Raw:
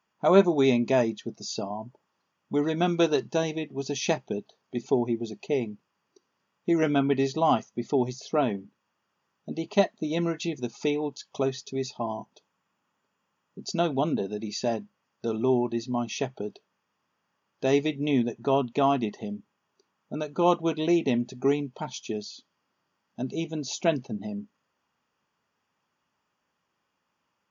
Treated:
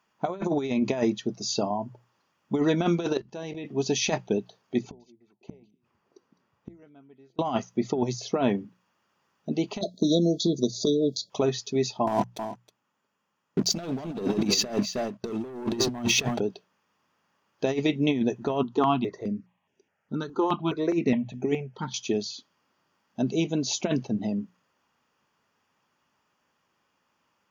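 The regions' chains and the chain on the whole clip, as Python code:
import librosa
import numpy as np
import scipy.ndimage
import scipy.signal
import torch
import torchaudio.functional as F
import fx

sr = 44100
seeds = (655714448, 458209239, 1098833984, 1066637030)

y = fx.chain(x, sr, fx.level_steps(step_db=20),
    fx.air_absorb(metres=67.0), at=(3.17, 3.65))
y = fx.chain(y, sr, fx.high_shelf(hz=2500.0, db=-9.5),
    fx.gate_flip(shuts_db=-31.0, range_db=-34),
    fx.echo_stepped(ms=207, hz=4200.0, octaves=-1.4, feedback_pct=70, wet_db=-11.0), at=(4.79, 7.39))
y = fx.chain(y, sr, fx.brickwall_bandstop(low_hz=690.0, high_hz=3300.0),
    fx.peak_eq(hz=4300.0, db=6.5, octaves=0.34),
    fx.band_squash(depth_pct=100), at=(9.81, 11.3))
y = fx.chain(y, sr, fx.leveller(passes=3),
    fx.echo_single(ms=317, db=-15.5), at=(12.07, 16.4))
y = fx.chain(y, sr, fx.air_absorb(metres=83.0),
    fx.phaser_held(hz=4.8, low_hz=610.0, high_hz=4300.0), at=(18.63, 21.94))
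y = fx.over_compress(y, sr, threshold_db=-25.0, ratio=-0.5)
y = fx.hum_notches(y, sr, base_hz=60, count=3)
y = F.gain(torch.from_numpy(y), 1.5).numpy()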